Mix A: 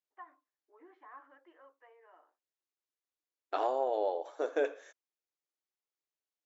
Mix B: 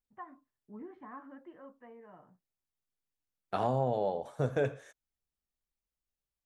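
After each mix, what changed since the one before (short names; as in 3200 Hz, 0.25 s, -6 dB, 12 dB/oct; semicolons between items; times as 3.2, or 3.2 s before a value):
first voice: remove HPF 1200 Hz 6 dB/oct; master: remove brick-wall FIR band-pass 280–7500 Hz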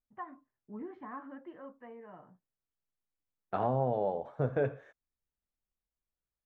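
first voice +3.5 dB; second voice: add LPF 1900 Hz 12 dB/oct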